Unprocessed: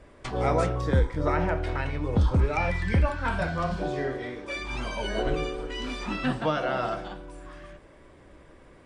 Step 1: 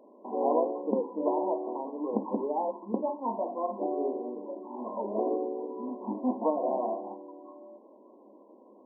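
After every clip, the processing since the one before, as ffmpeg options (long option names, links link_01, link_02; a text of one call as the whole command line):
ffmpeg -i in.wav -af "afftfilt=real='re*between(b*sr/4096,200,1100)':imag='im*between(b*sr/4096,200,1100)':win_size=4096:overlap=0.75" out.wav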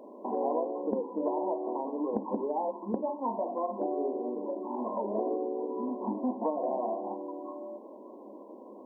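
ffmpeg -i in.wav -af "acompressor=threshold=-40dB:ratio=2.5,volume=7.5dB" out.wav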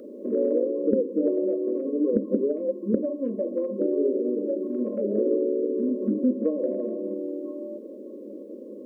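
ffmpeg -i in.wav -af "asuperstop=centerf=840:order=12:qfactor=1.3,volume=9dB" out.wav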